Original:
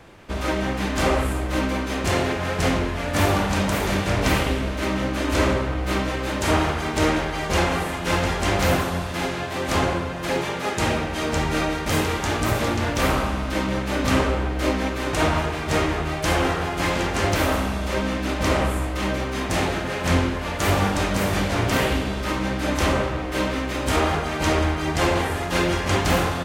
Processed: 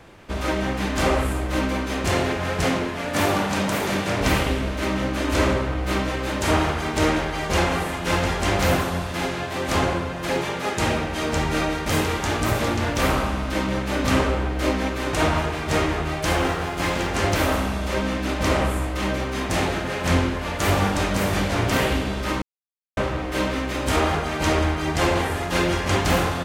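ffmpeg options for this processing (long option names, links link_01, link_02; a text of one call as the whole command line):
ffmpeg -i in.wav -filter_complex "[0:a]asettb=1/sr,asplit=3[link_01][link_02][link_03];[link_01]atrim=end=2.644[link_04];[link_02]atrim=start=2.64:end=4.21,asetpts=PTS-STARTPTS,afade=type=in:duration=0.004:curve=qsin,afade=type=out:start_time=1.566:duration=0.004:curve=qsin,highpass=130[link_05];[link_03]atrim=start=4.206[link_06];[link_04][link_05]acrossfade=duration=0.004:curve1=hsin:curve2=qsin[link_07];[link_07][link_06]acrossfade=duration=0.004:curve1=qsin:curve2=hsin,asettb=1/sr,asplit=3[link_08][link_09][link_10];[link_08]atrim=end=16.244[link_11];[link_09]atrim=start=16.24:end=17.1,asetpts=PTS-STARTPTS,afade=type=in:duration=0.004:curve=qsin,afade=type=out:start_time=0.856:duration=0.004:curve=qsin,aeval=exprs='sgn(val(0))*max(abs(val(0))-0.01,0)':channel_layout=same[link_12];[link_10]atrim=start=17.096[link_13];[link_11][link_12]acrossfade=duration=0.004:curve1=hsin:curve2=qsin[link_14];[link_14][link_13]acrossfade=duration=0.004:curve1=qsin:curve2=hsin,asplit=3[link_15][link_16][link_17];[link_15]atrim=end=22.42,asetpts=PTS-STARTPTS,afade=type=out:start_time=22.416:duration=0.004:curve=hsin[link_18];[link_16]atrim=start=22.42:end=22.97,asetpts=PTS-STARTPTS,volume=0[link_19];[link_17]atrim=start=22.97,asetpts=PTS-STARTPTS,afade=type=in:duration=0.004:curve=hsin[link_20];[link_18][link_19][link_20]concat=n=3:v=0:a=1" out.wav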